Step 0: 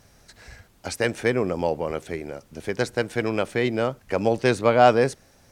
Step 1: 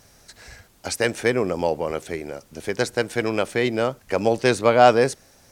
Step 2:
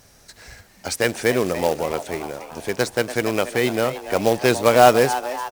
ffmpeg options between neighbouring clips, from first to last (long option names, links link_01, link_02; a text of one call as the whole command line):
ffmpeg -i in.wav -af "bass=frequency=250:gain=-3,treble=frequency=4000:gain=4,volume=2dB" out.wav
ffmpeg -i in.wav -filter_complex "[0:a]asplit=6[link_01][link_02][link_03][link_04][link_05][link_06];[link_02]adelay=288,afreqshift=130,volume=-12.5dB[link_07];[link_03]adelay=576,afreqshift=260,volume=-18.2dB[link_08];[link_04]adelay=864,afreqshift=390,volume=-23.9dB[link_09];[link_05]adelay=1152,afreqshift=520,volume=-29.5dB[link_10];[link_06]adelay=1440,afreqshift=650,volume=-35.2dB[link_11];[link_01][link_07][link_08][link_09][link_10][link_11]amix=inputs=6:normalize=0,acrusher=bits=3:mode=log:mix=0:aa=0.000001,volume=1dB" out.wav